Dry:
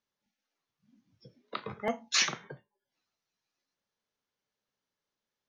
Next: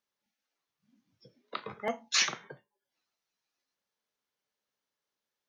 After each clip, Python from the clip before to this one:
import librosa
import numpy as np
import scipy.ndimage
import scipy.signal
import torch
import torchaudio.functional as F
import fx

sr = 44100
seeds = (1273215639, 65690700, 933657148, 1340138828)

y = fx.low_shelf(x, sr, hz=200.0, db=-9.0)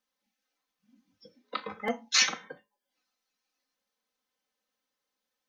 y = x + 1.0 * np.pad(x, (int(3.9 * sr / 1000.0), 0))[:len(x)]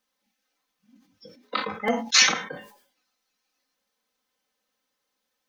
y = fx.sustainer(x, sr, db_per_s=100.0)
y = F.gain(torch.from_numpy(y), 6.0).numpy()